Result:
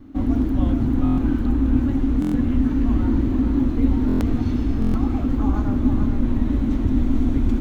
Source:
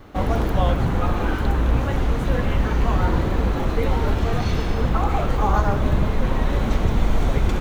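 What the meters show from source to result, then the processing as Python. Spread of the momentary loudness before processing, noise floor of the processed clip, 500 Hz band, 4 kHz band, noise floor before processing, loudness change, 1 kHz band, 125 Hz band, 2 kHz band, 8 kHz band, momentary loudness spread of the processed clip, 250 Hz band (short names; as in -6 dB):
2 LU, -23 dBFS, -7.5 dB, under -10 dB, -24 dBFS, +1.0 dB, -11.0 dB, -1.5 dB, -11.5 dB, n/a, 2 LU, +7.5 dB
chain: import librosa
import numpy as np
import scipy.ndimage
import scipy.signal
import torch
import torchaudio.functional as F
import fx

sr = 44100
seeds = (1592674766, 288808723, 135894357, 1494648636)

y = fx.curve_eq(x, sr, hz=(110.0, 180.0, 260.0, 440.0), db=(0, -7, 15, -11))
y = y + 10.0 ** (-6.0 / 20.0) * np.pad(y, (int(442 * sr / 1000.0), 0))[:len(y)]
y = fx.buffer_glitch(y, sr, at_s=(1.04, 2.2, 4.07, 4.8), block=1024, repeats=5)
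y = y * 10.0 ** (-1.5 / 20.0)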